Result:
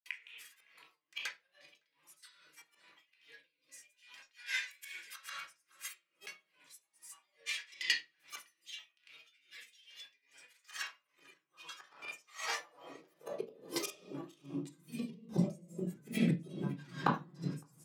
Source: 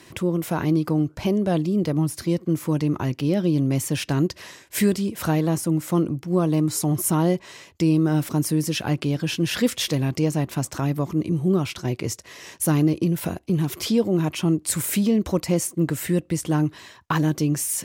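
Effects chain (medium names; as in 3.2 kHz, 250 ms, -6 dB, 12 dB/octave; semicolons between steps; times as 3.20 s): high-pass 87 Hz 24 dB/octave; hum notches 50/100/150/200/250/300 Hz; feedback comb 550 Hz, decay 0.23 s, harmonics all, mix 90%; inverted gate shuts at -34 dBFS, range -26 dB; high-pass sweep 2.2 kHz -> 180 Hz, 11.00–14.98 s; granulator, grains 20 per s, pitch spread up and down by 3 st; echo from a far wall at 96 m, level -20 dB; reverberation RT60 0.60 s, pre-delay 3 ms, DRR -0.5 dB; logarithmic tremolo 2.4 Hz, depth 23 dB; trim +17 dB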